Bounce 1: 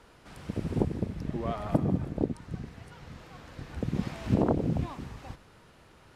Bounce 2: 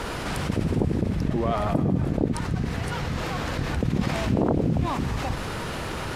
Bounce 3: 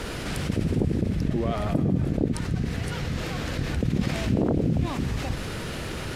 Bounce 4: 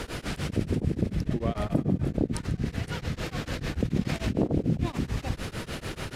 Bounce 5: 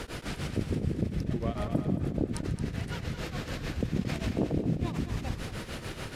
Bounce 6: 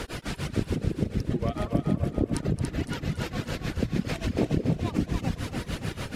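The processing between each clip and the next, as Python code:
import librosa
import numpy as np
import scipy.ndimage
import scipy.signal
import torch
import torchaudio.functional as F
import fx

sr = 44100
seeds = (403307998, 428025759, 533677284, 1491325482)

y1 = fx.env_flatten(x, sr, amount_pct=70)
y2 = fx.peak_eq(y1, sr, hz=960.0, db=-8.0, octaves=1.1)
y3 = y2 * np.abs(np.cos(np.pi * 6.8 * np.arange(len(y2)) / sr))
y4 = fx.echo_feedback(y3, sr, ms=222, feedback_pct=35, wet_db=-9.5)
y4 = y4 * librosa.db_to_amplitude(-3.5)
y5 = fx.dereverb_blind(y4, sr, rt60_s=1.7)
y5 = fx.echo_split(y5, sr, split_hz=350.0, low_ms=578, high_ms=284, feedback_pct=52, wet_db=-5)
y5 = y5 * librosa.db_to_amplitude(4.0)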